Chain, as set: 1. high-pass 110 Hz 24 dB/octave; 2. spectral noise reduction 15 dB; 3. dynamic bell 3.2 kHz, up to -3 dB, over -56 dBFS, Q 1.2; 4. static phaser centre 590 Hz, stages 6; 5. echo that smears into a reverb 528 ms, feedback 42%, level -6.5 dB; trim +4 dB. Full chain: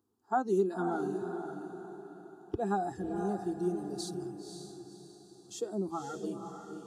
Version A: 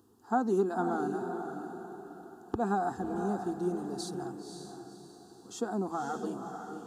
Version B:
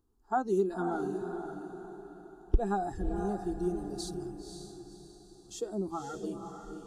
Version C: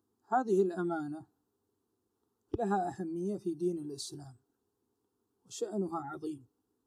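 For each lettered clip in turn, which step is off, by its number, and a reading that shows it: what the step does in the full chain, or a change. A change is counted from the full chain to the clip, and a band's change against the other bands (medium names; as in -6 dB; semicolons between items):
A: 2, 2 kHz band +2.5 dB; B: 1, 125 Hz band +2.5 dB; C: 5, echo-to-direct -5.5 dB to none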